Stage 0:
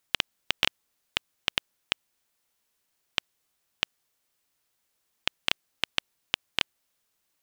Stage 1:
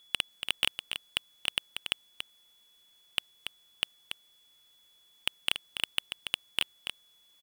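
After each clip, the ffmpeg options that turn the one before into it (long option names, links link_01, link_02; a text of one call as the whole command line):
ffmpeg -i in.wav -af "aeval=exprs='val(0)+0.000631*sin(2*PI*3400*n/s)':channel_layout=same,asoftclip=type=tanh:threshold=-17dB,aecho=1:1:284:0.398,volume=5.5dB" out.wav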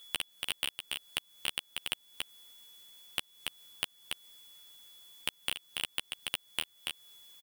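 ffmpeg -i in.wav -filter_complex "[0:a]highshelf=frequency=7400:gain=8,acompressor=threshold=-38dB:ratio=3,asplit=2[link_01][link_02];[link_02]adelay=12,volume=-4dB[link_03];[link_01][link_03]amix=inputs=2:normalize=0,volume=3.5dB" out.wav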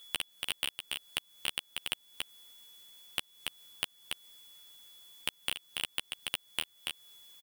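ffmpeg -i in.wav -af anull out.wav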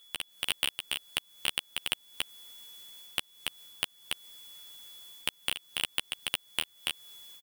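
ffmpeg -i in.wav -af "dynaudnorm=framelen=150:gausssize=3:maxgain=10dB,volume=-4dB" out.wav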